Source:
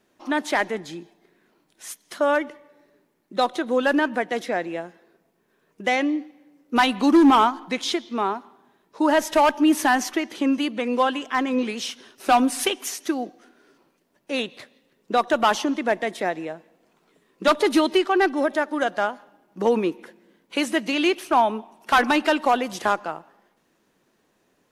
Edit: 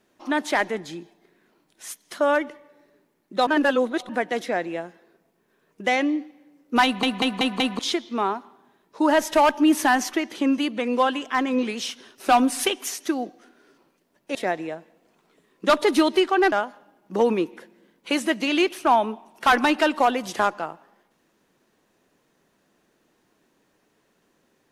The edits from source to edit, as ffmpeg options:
-filter_complex "[0:a]asplit=10[s0][s1][s2][s3][s4][s5][s6][s7][s8][s9];[s0]atrim=end=3.472[s10];[s1]atrim=start=3.468:end=4.092,asetpts=PTS-STARTPTS,areverse[s11];[s2]atrim=start=4.088:end=7.032[s12];[s3]atrim=start=6.838:end=7.032[s13];[s4]atrim=start=6.838:end=7.032[s14];[s5]atrim=start=6.838:end=7.032[s15];[s6]atrim=start=6.838:end=7.032[s16];[s7]atrim=start=7.788:end=14.352[s17];[s8]atrim=start=16.128:end=18.302[s18];[s9]atrim=start=18.978[s19];[s10][s11]acrossfade=d=0.004:c1=hsin:c2=hsin[s20];[s20][s12]acrossfade=d=0.004:c1=hsin:c2=hsin[s21];[s21][s13]acrossfade=d=0.004:c1=hsin:c2=hsin[s22];[s22][s14]acrossfade=d=0.004:c1=hsin:c2=hsin[s23];[s23][s15]acrossfade=d=0.004:c1=hsin:c2=hsin[s24];[s24][s16]acrossfade=d=0.004:c1=hsin:c2=hsin[s25];[s25][s17]acrossfade=d=0.004:c1=hsin:c2=hsin[s26];[s26][s18]acrossfade=d=0.004:c1=hsin:c2=hsin[s27];[s27][s19]acrossfade=d=0.004:c1=hsin:c2=hsin"

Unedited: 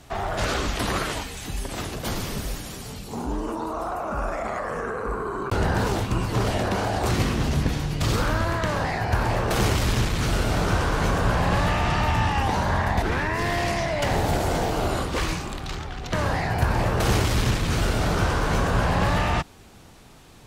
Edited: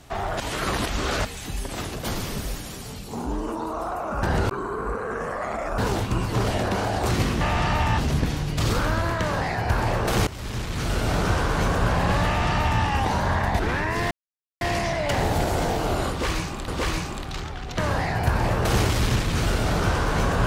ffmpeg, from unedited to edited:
-filter_complex "[0:a]asplit=10[s0][s1][s2][s3][s4][s5][s6][s7][s8][s9];[s0]atrim=end=0.402[s10];[s1]atrim=start=0.398:end=1.252,asetpts=PTS-STARTPTS,areverse[s11];[s2]atrim=start=1.248:end=4.232[s12];[s3]atrim=start=4.228:end=5.782,asetpts=PTS-STARTPTS,areverse[s13];[s4]atrim=start=5.778:end=7.412[s14];[s5]atrim=start=11.688:end=12.262[s15];[s6]atrim=start=7.408:end=9.7,asetpts=PTS-STARTPTS,afade=t=out:st=2.288:d=0.004:c=hsin:silence=0.133352[s16];[s7]atrim=start=9.7:end=13.54,asetpts=PTS-STARTPTS,afade=t=in:d=0.84:silence=0.133352,afade=t=out:st=3.836:d=0.004:c=hsin,apad=pad_dur=0.5[s17];[s8]atrim=start=13.54:end=15.612,asetpts=PTS-STARTPTS,afade=t=in:d=0.004:c=hsin[s18];[s9]atrim=start=15.028[s19];[s10][s11]acrossfade=d=0.004:c1=hsin:c2=hsin[s20];[s20][s12]acrossfade=d=0.004:c1=hsin:c2=hsin[s21];[s21][s13]acrossfade=d=0.004:c1=hsin:c2=hsin[s22];[s22][s14]acrossfade=d=0.004:c1=hsin:c2=hsin[s23];[s23][s15]acrossfade=d=0.004:c1=hsin:c2=hsin[s24];[s16][s17][s18]concat=n=3:v=0:a=1[s25];[s24][s25]acrossfade=d=0.004:c1=hsin:c2=hsin[s26];[s26][s19]acrossfade=d=0.004:c1=hsin:c2=hsin"

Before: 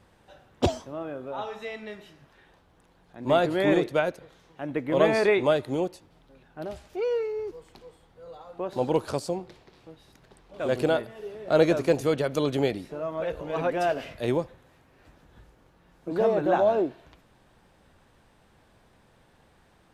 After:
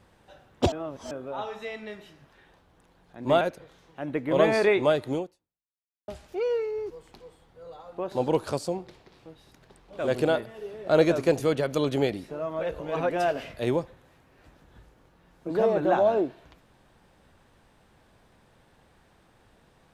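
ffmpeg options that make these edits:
-filter_complex "[0:a]asplit=5[s0][s1][s2][s3][s4];[s0]atrim=end=0.722[s5];[s1]atrim=start=0.718:end=1.112,asetpts=PTS-STARTPTS,areverse[s6];[s2]atrim=start=1.108:end=3.412[s7];[s3]atrim=start=4.018:end=6.69,asetpts=PTS-STARTPTS,afade=t=out:st=1.752:d=0.92:c=exp[s8];[s4]atrim=start=6.69,asetpts=PTS-STARTPTS,afade=t=in:d=0.004:c=hsin[s9];[s5][s6]acrossfade=d=0.004:c1=hsin:c2=hsin[s10];[s10][s7]acrossfade=d=0.004:c1=hsin:c2=hsin[s11];[s8][s9]concat=n=2:v=0:a=1[s12];[s11][s12]acrossfade=d=0.004:c1=hsin:c2=hsin"

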